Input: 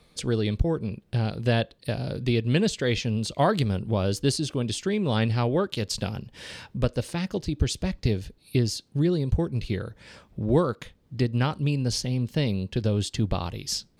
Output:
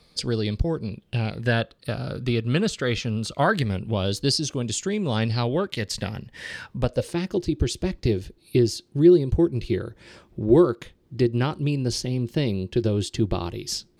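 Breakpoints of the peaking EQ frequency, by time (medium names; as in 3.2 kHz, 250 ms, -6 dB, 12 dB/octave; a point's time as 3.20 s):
peaking EQ +13 dB 0.27 oct
0.80 s 4.8 kHz
1.62 s 1.3 kHz
3.39 s 1.3 kHz
4.57 s 7 kHz
5.12 s 7 kHz
5.78 s 1.9 kHz
6.52 s 1.9 kHz
7.16 s 350 Hz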